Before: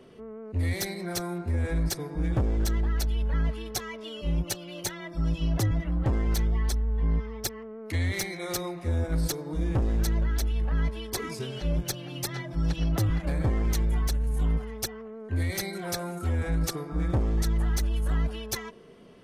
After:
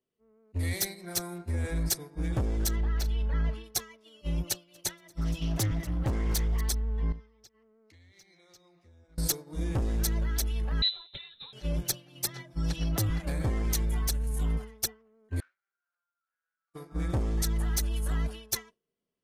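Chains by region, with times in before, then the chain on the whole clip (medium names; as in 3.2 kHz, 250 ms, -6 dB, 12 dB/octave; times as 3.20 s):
2.76–3.64 s: peaking EQ 11 kHz -14 dB 1.5 oct + doubling 38 ms -13 dB
4.44–6.61 s: feedback delay 238 ms, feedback 33%, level -14.5 dB + loudspeaker Doppler distortion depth 0.18 ms
7.12–9.18 s: resonant high shelf 7.5 kHz -11 dB, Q 1.5 + compression 12:1, threshold -36 dBFS
10.82–11.53 s: frequency inversion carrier 4 kHz + tilt EQ -2 dB/octave
15.40–16.74 s: median filter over 25 samples + ladder band-pass 1.5 kHz, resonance 85% + compression, threshold -51 dBFS
whole clip: expander -28 dBFS; treble shelf 4.2 kHz +11 dB; trim -3.5 dB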